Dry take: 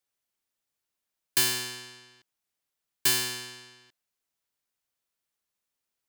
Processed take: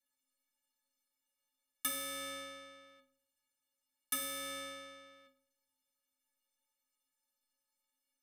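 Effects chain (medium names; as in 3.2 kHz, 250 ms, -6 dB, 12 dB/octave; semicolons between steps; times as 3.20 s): compression 12:1, threshold -32 dBFS, peak gain reduction 13 dB; inharmonic resonator 350 Hz, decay 0.32 s, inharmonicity 0.03; reverberation RT60 0.60 s, pre-delay 7 ms, DRR 15.5 dB; speed mistake 45 rpm record played at 33 rpm; trim +12.5 dB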